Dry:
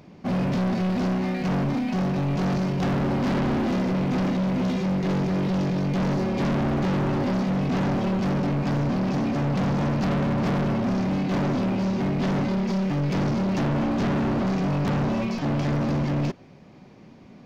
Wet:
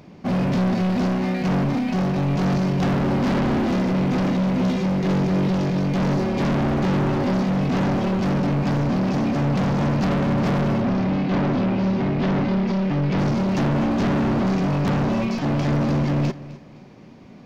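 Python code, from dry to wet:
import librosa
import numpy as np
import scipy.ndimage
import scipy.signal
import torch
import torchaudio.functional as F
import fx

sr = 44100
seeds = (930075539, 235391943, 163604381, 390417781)

y = fx.lowpass(x, sr, hz=4200.0, slope=12, at=(10.82, 13.19))
y = fx.echo_feedback(y, sr, ms=257, feedback_pct=30, wet_db=-17.5)
y = y * 10.0 ** (3.0 / 20.0)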